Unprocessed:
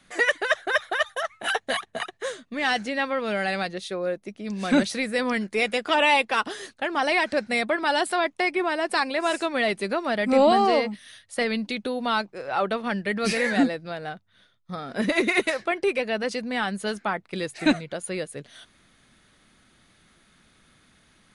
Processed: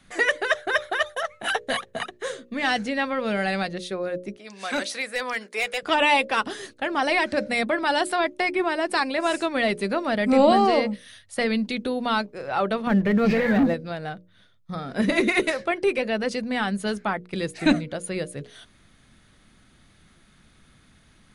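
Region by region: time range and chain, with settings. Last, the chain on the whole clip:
0:04.36–0:05.83: high-pass filter 650 Hz + hard clipping −19 dBFS
0:12.87–0:13.74: head-to-tape spacing loss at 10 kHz 34 dB + leveller curve on the samples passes 2 + downward compressor, threshold −19 dBFS
whole clip: low-shelf EQ 200 Hz +9.5 dB; mains-hum notches 60/120/180/240/300/360/420/480/540/600 Hz

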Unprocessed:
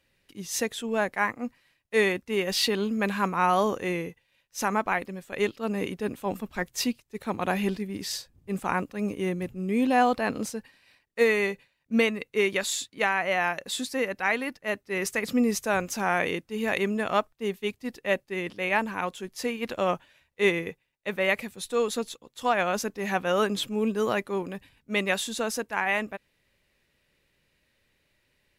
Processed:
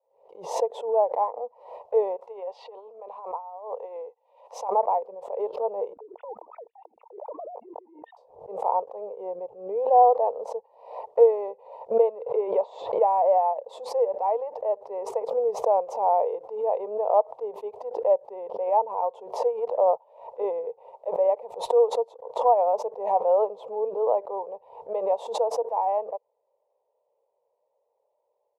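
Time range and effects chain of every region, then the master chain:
0:02.16–0:04.69: treble cut that deepens with the level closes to 2,500 Hz, closed at −18.5 dBFS + compressor whose output falls as the input rises −29 dBFS, ratio −0.5 + high-pass filter 1,300 Hz 6 dB per octave
0:05.93–0:08.17: three sine waves on the formant tracks + compressor whose output falls as the input rises −39 dBFS + low-pass filter 1,000 Hz
0:12.26–0:13.38: low-pass filter 3,200 Hz + envelope flattener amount 50%
whole clip: automatic gain control gain up to 6 dB; elliptic band-pass filter 460–940 Hz, stop band 40 dB; background raised ahead of every attack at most 95 dB per second; level +1.5 dB

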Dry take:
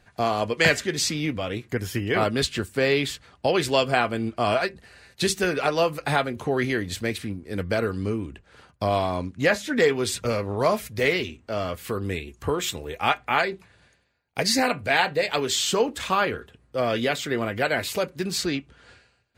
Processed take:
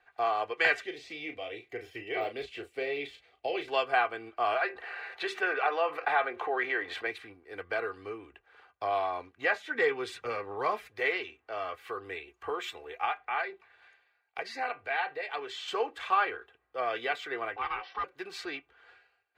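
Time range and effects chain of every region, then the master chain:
0:00.82–0:03.68: de-essing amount 85% + flat-topped bell 1,200 Hz −12 dB 1.2 octaves + double-tracking delay 35 ms −8 dB
0:04.61–0:07.07: bass and treble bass −14 dB, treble −12 dB + envelope flattener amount 50%
0:09.75–0:10.90: parametric band 170 Hz +9 dB 1.2 octaves + notch filter 670 Hz, Q 8.4
0:13.05–0:15.68: high-shelf EQ 7,000 Hz −7.5 dB + downward compressor 1.5 to 1, threshold −31 dBFS + one half of a high-frequency compander encoder only
0:17.56–0:18.04: high-shelf EQ 2,300 Hz −7.5 dB + ring modulation 640 Hz + linear-phase brick-wall low-pass 5,900 Hz
whole clip: three-way crossover with the lows and the highs turned down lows −23 dB, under 500 Hz, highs −20 dB, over 3,100 Hz; comb filter 2.6 ms, depth 58%; level −4.5 dB

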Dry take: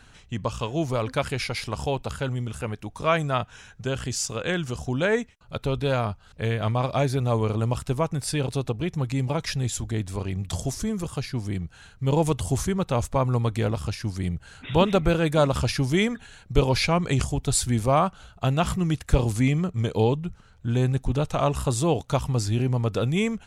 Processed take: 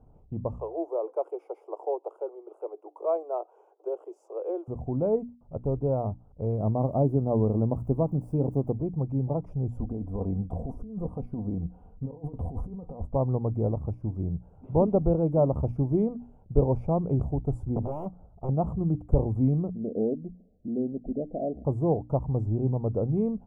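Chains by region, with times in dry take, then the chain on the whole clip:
0:00.59–0:04.68: mu-law and A-law mismatch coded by mu + Butterworth high-pass 340 Hz 96 dB per octave
0:06.58–0:08.73: spike at every zero crossing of −24 dBFS + parametric band 240 Hz +5.5 dB 1.1 octaves
0:09.71–0:13.05: parametric band 6,900 Hz −9.5 dB 0.38 octaves + comb filter 4.1 ms, depth 54% + compressor whose output falls as the input rises −29 dBFS, ratio −0.5
0:17.76–0:18.49: high-shelf EQ 2,700 Hz −12 dB + downward compressor 8 to 1, threshold −22 dBFS + wrap-around overflow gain 21.5 dB
0:19.74–0:21.65: downward compressor 1.5 to 1, threshold −29 dBFS + Butterworth low-pass 720 Hz 96 dB per octave + low shelf with overshoot 170 Hz −9.5 dB, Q 3
whole clip: inverse Chebyshev low-pass filter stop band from 1,600 Hz, stop band 40 dB; mains-hum notches 60/120/180/240/300 Hz; level −1.5 dB

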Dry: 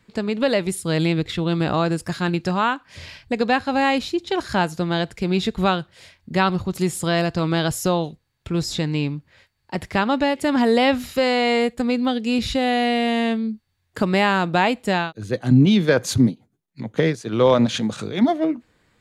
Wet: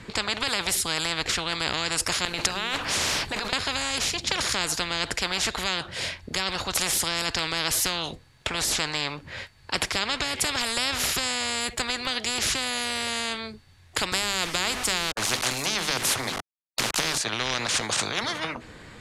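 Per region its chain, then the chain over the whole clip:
0:02.25–0:03.53: mu-law and A-law mismatch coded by mu + compressor whose output falls as the input rises −28 dBFS + mains-hum notches 60/120/180/240/300/360/420/480 Hz
0:14.12–0:17.18: mains-hum notches 50/100/150/200/250/300/350/400 Hz + centre clipping without the shift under −38 dBFS + multiband upward and downward compressor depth 70%
whole clip: Bessel low-pass filter 9,800 Hz, order 8; every bin compressed towards the loudest bin 10 to 1

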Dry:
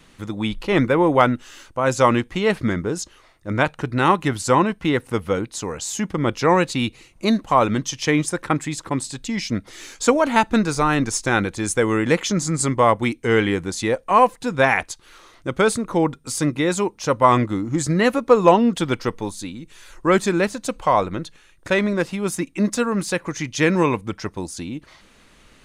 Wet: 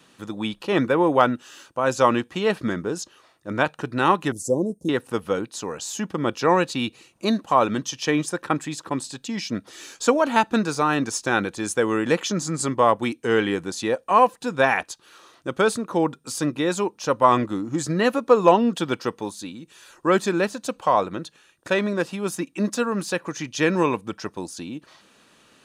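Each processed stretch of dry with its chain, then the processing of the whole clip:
0:04.32–0:04.89: elliptic band-stop filter 540–6,400 Hz, stop band 80 dB + parametric band 9,900 Hz +5.5 dB 0.33 octaves
whole clip: Bessel high-pass filter 190 Hz, order 2; notch filter 2,100 Hz, Q 6.6; dynamic equaliser 8,600 Hz, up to −4 dB, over −41 dBFS, Q 1.5; level −1.5 dB

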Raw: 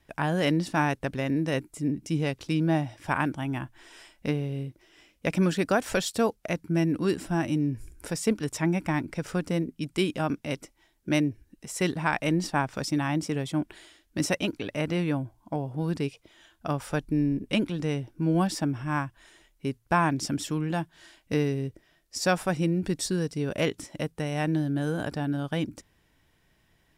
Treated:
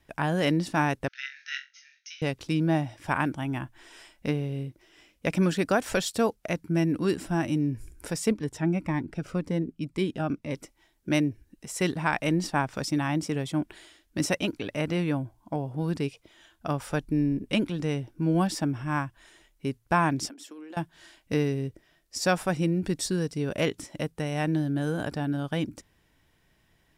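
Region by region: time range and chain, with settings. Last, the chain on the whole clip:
0:01.08–0:02.22: log-companded quantiser 8 bits + linear-phase brick-wall band-pass 1,300–6,600 Hz + flutter between parallel walls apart 3.8 metres, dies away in 0.24 s
0:08.31–0:10.55: high-shelf EQ 3,900 Hz −11.5 dB + phaser whose notches keep moving one way falling 1.9 Hz
0:20.29–0:20.77: noise gate −26 dBFS, range −12 dB + elliptic high-pass filter 250 Hz, stop band 50 dB + compressor whose output falls as the input rises −43 dBFS
whole clip: no processing

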